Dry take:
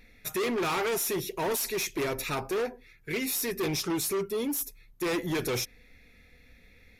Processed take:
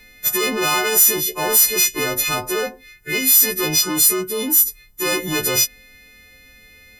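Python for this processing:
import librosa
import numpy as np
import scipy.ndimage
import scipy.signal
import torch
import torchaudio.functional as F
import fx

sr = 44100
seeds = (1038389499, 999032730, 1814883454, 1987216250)

y = fx.freq_snap(x, sr, grid_st=3)
y = F.gain(torch.from_numpy(y), 6.5).numpy()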